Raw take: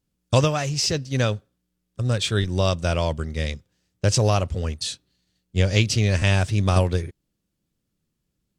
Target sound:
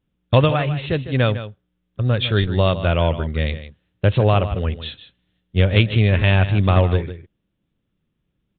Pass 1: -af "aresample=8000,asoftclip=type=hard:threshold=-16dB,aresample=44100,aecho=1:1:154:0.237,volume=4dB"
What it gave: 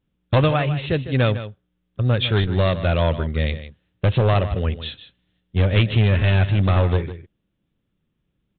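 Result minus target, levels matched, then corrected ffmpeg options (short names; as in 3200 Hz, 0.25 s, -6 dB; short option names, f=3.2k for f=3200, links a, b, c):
hard clip: distortion +17 dB
-af "aresample=8000,asoftclip=type=hard:threshold=-8.5dB,aresample=44100,aecho=1:1:154:0.237,volume=4dB"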